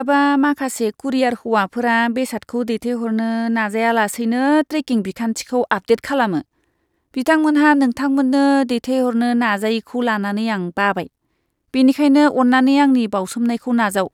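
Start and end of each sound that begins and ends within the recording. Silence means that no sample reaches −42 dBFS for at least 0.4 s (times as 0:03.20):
0:07.14–0:11.07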